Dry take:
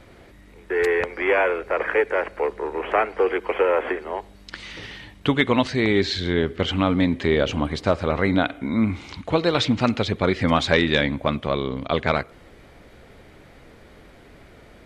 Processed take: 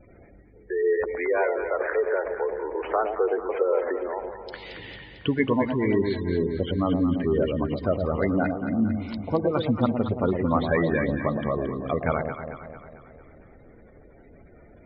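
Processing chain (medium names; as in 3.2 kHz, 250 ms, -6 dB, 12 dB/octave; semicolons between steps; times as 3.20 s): low-pass that closes with the level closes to 2.2 kHz, closed at -20 dBFS; spectral gate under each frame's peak -15 dB strong; echo whose repeats swap between lows and highs 112 ms, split 830 Hz, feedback 73%, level -5 dB; trim -3.5 dB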